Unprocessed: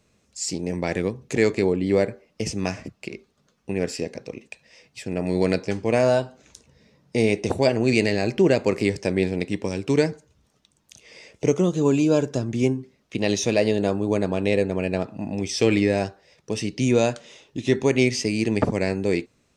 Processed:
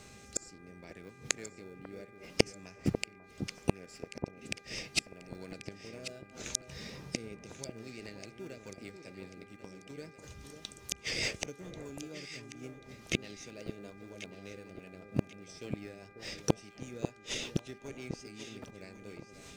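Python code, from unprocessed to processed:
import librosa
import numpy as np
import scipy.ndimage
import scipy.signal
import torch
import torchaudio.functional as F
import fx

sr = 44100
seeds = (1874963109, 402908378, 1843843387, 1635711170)

p1 = fx.high_shelf(x, sr, hz=2200.0, db=8.5)
p2 = fx.sample_hold(p1, sr, seeds[0], rate_hz=1000.0, jitter_pct=0)
p3 = p1 + F.gain(torch.from_numpy(p2), -10.5).numpy()
p4 = fx.gate_flip(p3, sr, shuts_db=-20.0, range_db=-37)
p5 = fx.rotary_switch(p4, sr, hz=0.7, then_hz=5.0, switch_at_s=7.08)
p6 = fx.dmg_buzz(p5, sr, base_hz=400.0, harmonics=6, level_db=-70.0, tilt_db=-1, odd_only=False)
p7 = p6 + fx.echo_alternate(p6, sr, ms=544, hz=1200.0, feedback_pct=57, wet_db=-7.5, dry=0)
y = F.gain(torch.from_numpy(p7), 10.0).numpy()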